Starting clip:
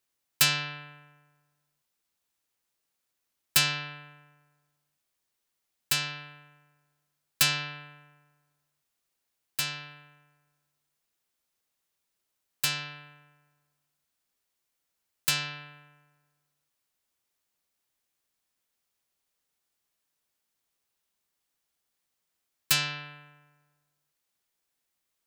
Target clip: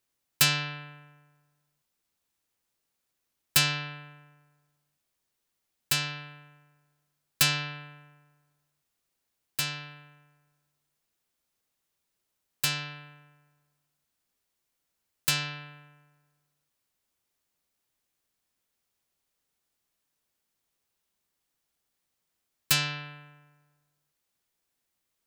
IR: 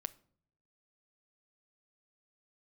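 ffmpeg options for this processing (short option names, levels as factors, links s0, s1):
-af "lowshelf=f=430:g=4.5"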